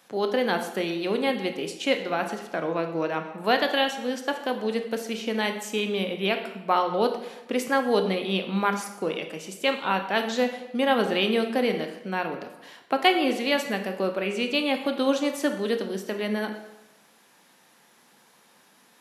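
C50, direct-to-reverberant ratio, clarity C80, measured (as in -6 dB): 8.0 dB, 5.5 dB, 10.5 dB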